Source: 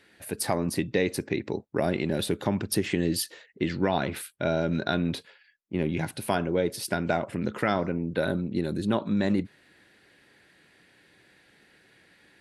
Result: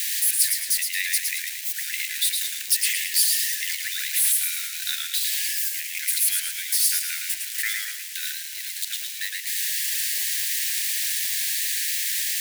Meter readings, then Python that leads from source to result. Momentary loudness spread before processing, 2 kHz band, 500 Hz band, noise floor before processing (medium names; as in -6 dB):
6 LU, +6.5 dB, under -40 dB, -61 dBFS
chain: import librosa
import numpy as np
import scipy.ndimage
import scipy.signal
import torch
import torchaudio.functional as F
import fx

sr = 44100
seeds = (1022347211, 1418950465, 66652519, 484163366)

y = x + 0.5 * 10.0 ** (-22.5 / 20.0) * np.diff(np.sign(x), prepend=np.sign(x[:1]))
y = scipy.signal.sosfilt(scipy.signal.butter(12, 1700.0, 'highpass', fs=sr, output='sos'), y)
y = fx.echo_warbled(y, sr, ms=111, feedback_pct=44, rate_hz=2.8, cents=103, wet_db=-4.0)
y = y * librosa.db_to_amplitude(5.5)